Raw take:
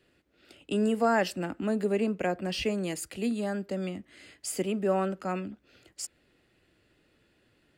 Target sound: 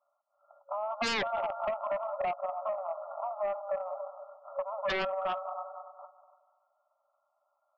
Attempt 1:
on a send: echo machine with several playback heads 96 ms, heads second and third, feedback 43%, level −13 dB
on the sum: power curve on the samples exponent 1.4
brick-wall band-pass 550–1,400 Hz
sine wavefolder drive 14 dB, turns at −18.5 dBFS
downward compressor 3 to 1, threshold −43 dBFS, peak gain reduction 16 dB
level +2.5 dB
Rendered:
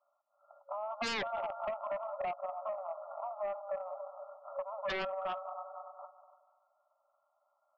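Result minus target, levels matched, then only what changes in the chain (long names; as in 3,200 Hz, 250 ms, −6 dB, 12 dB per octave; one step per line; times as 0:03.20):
downward compressor: peak gain reduction +4.5 dB
change: downward compressor 3 to 1, threshold −36 dBFS, peak gain reduction 11.5 dB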